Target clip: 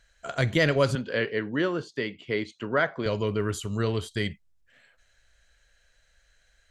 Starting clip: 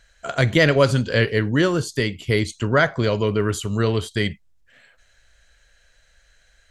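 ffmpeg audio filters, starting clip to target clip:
-filter_complex "[0:a]asettb=1/sr,asplit=3[a][b][c];[a]atrim=end=0.954[d];[b]atrim=start=0.95:end=3.06,asetpts=PTS-STARTPTS,afade=t=in:d=0.004:c=qsin,afade=t=out:st=2.106:d=0.004:c=qsin,highpass=210,lowpass=3.3k[e];[c]atrim=start=3.056[f];[d][e]acrossfade=d=0.004:c1=hsin:c2=qsin[g];[g][f]acrossfade=d=0.004:c1=qsin:c2=hsin,volume=-6.5dB"

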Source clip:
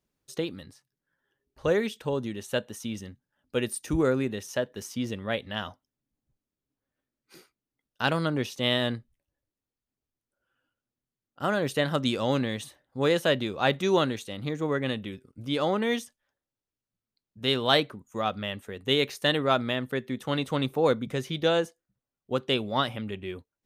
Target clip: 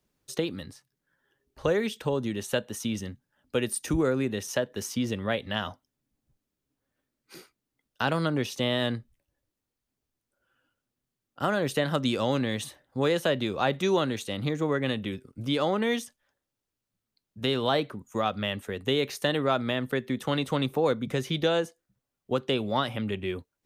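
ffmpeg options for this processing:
-filter_complex "[0:a]acrossover=split=230|1300[a][b][c];[c]alimiter=limit=-20dB:level=0:latency=1:release=54[d];[a][b][d]amix=inputs=3:normalize=0,acompressor=threshold=-31dB:ratio=2,volume=5dB"

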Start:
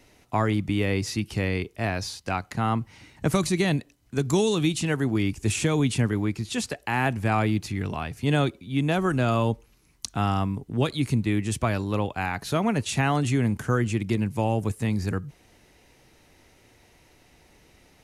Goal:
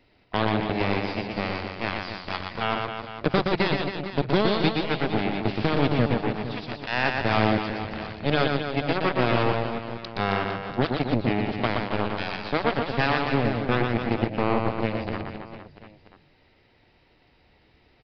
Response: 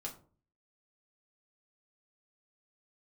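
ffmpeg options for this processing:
-af "aeval=exprs='0.335*(cos(1*acos(clip(val(0)/0.335,-1,1)))-cos(1*PI/2))+0.075*(cos(7*acos(clip(val(0)/0.335,-1,1)))-cos(7*PI/2))':c=same,aecho=1:1:120|270|457.5|691.9|984.8:0.631|0.398|0.251|0.158|0.1,aresample=11025,aresample=44100"

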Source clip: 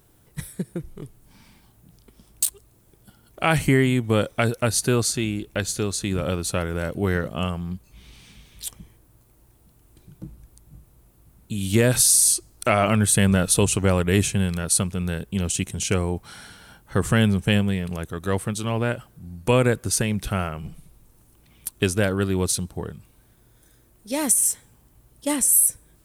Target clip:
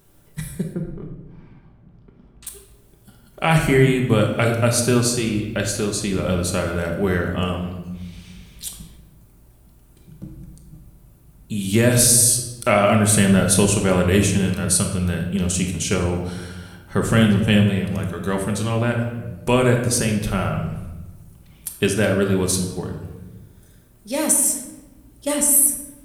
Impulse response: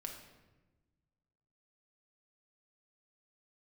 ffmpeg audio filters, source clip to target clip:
-filter_complex "[0:a]asettb=1/sr,asplit=3[a][b][c];[a]atrim=end=0.734[d];[b]atrim=start=0.73:end=2.47,asetpts=PTS-STARTPTS,afade=t=in:d=0.004:c=qsin,afade=t=out:st=1.736:d=0.004:c=qsin,lowpass=1.6k[e];[c]atrim=start=2.466[f];[d][e]acrossfade=d=0.004:c1=hsin:c2=qsin[g];[g][f]acrossfade=d=0.004:c1=qsin:c2=hsin[h];[1:a]atrim=start_sample=2205[i];[h][i]afir=irnorm=-1:irlink=0,volume=5.5dB"

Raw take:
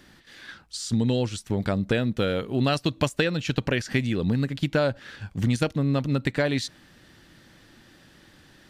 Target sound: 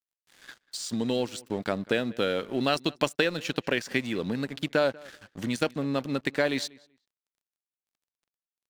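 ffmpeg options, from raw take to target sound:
-filter_complex "[0:a]highpass=260,aeval=exprs='sgn(val(0))*max(abs(val(0))-0.00531,0)':c=same,asplit=2[a][b];[b]adelay=191,lowpass=f=3.5k:p=1,volume=-23dB,asplit=2[c][d];[d]adelay=191,lowpass=f=3.5k:p=1,volume=0.18[e];[a][c][e]amix=inputs=3:normalize=0"

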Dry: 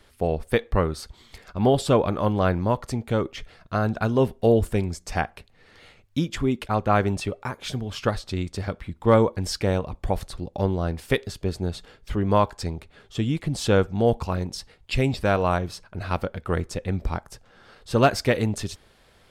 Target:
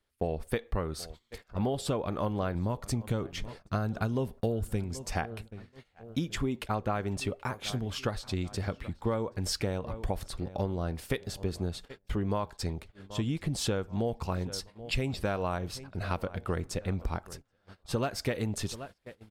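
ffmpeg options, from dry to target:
-filter_complex "[0:a]asettb=1/sr,asplit=3[a][b][c];[a]atrim=end=2.554[d];[b]atrim=start=2.55:end=4.84,asetpts=PTS-STARTPTS,afade=t=in:d=0.004:c=qsin,afade=t=out:st=2.286:d=0.004:c=qsin,bass=f=250:g=5,treble=f=4k:g=4[e];[c]atrim=start=4.836[f];[d][e]acrossfade=d=0.004:c1=hsin:c2=qsin[g];[g][f]acrossfade=d=0.004:c1=qsin:c2=hsin,asplit=2[h][i];[i]adelay=779,lowpass=f=3k:p=1,volume=-22dB,asplit=2[j][k];[k]adelay=779,lowpass=f=3k:p=1,volume=0.49,asplit=2[l][m];[m]adelay=779,lowpass=f=3k:p=1,volume=0.49[n];[h][j][l][n]amix=inputs=4:normalize=0,acompressor=threshold=-23dB:ratio=16,highshelf=f=11k:g=5.5,agate=range=-21dB:threshold=-42dB:ratio=16:detection=peak,volume=-3dB"

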